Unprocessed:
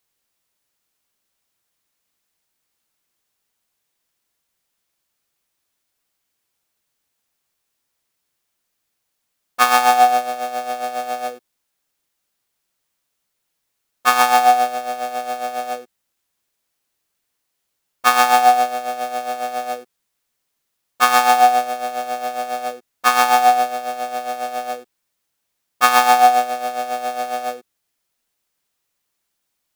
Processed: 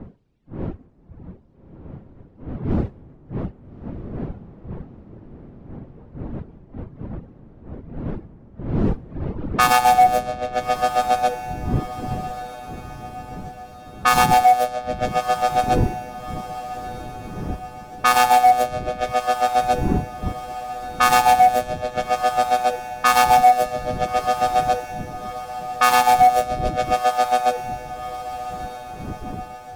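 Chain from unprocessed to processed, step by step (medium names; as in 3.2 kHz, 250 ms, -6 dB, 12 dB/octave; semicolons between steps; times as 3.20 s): wind noise 230 Hz -37 dBFS; reverb removal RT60 1.7 s; peak limiter -12 dBFS, peak gain reduction 11 dB; level-controlled noise filter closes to 2.2 kHz, open at -19.5 dBFS; saturation -13 dBFS, distortion -21 dB; on a send: echo that smears into a reverb 1270 ms, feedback 48%, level -13 dB; on the sum: trim +8 dB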